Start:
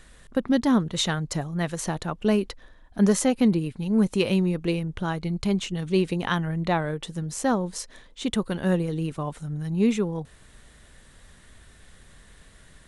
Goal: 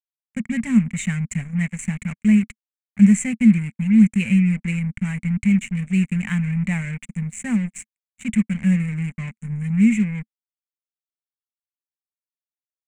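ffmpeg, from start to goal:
ffmpeg -i in.wav -af "acrusher=bits=4:mix=0:aa=0.5,firequalizer=gain_entry='entry(100,0);entry(220,10);entry(310,-20);entry(1300,-12);entry(2200,11);entry(3400,-16);entry(5100,-21);entry(7500,6);entry(12000,-20)':delay=0.05:min_phase=1" out.wav

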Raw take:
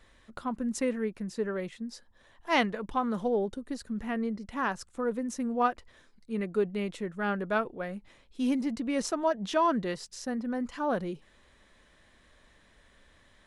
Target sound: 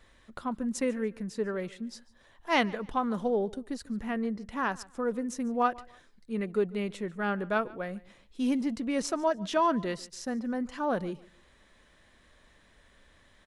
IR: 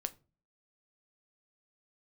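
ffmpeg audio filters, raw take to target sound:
-af "aecho=1:1:145|290:0.0794|0.0222"

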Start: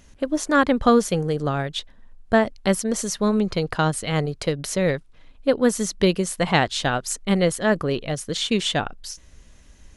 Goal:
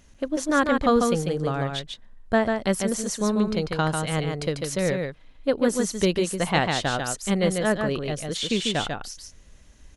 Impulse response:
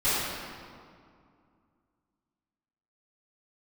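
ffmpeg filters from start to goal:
-af "aecho=1:1:145:0.596,volume=-3.5dB"

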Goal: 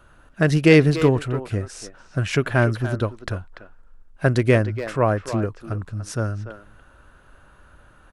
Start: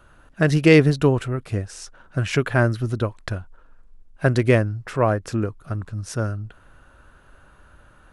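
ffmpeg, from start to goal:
ffmpeg -i in.wav -filter_complex "[0:a]asplit=2[link_01][link_02];[link_02]adelay=290,highpass=300,lowpass=3400,asoftclip=type=hard:threshold=-11dB,volume=-10dB[link_03];[link_01][link_03]amix=inputs=2:normalize=0" out.wav

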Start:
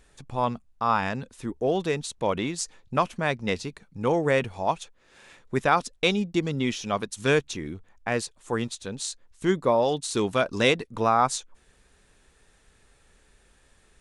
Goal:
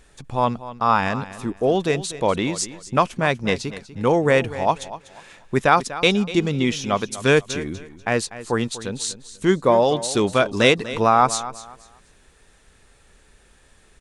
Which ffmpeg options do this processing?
ffmpeg -i in.wav -af "aecho=1:1:244|488|732:0.178|0.0462|0.012,volume=5.5dB" out.wav

